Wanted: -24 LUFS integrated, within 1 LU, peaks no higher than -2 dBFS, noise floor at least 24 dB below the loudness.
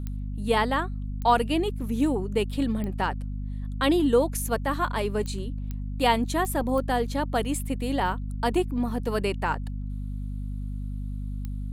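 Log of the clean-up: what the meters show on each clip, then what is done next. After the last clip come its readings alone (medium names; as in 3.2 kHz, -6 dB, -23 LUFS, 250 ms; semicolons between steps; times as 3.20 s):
clicks found 8; hum 50 Hz; highest harmonic 250 Hz; hum level -29 dBFS; loudness -27.5 LUFS; peak level -9.5 dBFS; loudness target -24.0 LUFS
-> de-click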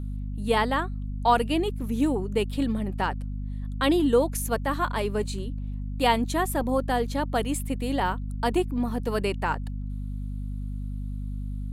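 clicks found 0; hum 50 Hz; highest harmonic 250 Hz; hum level -29 dBFS
-> de-hum 50 Hz, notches 5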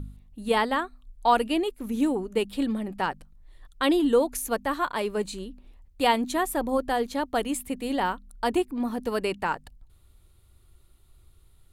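hum not found; loudness -27.0 LUFS; peak level -9.0 dBFS; loudness target -24.0 LUFS
-> trim +3 dB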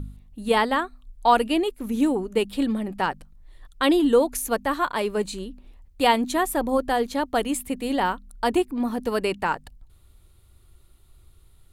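loudness -24.0 LUFS; peak level -6.0 dBFS; noise floor -55 dBFS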